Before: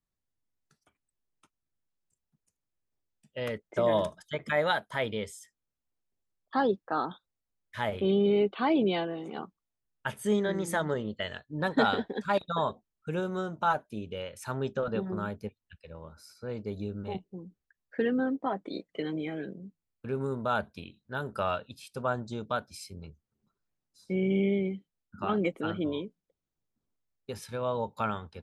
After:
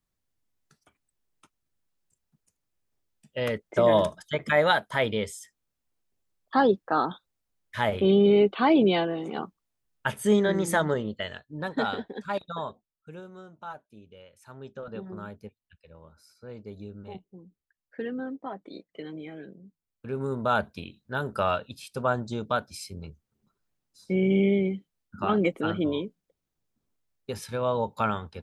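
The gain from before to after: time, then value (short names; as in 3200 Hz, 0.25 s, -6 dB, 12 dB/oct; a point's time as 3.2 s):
10.79 s +5.5 dB
11.66 s -3 dB
12.47 s -3 dB
13.33 s -13 dB
14.46 s -13 dB
15.04 s -5.5 dB
19.65 s -5.5 dB
20.48 s +4.5 dB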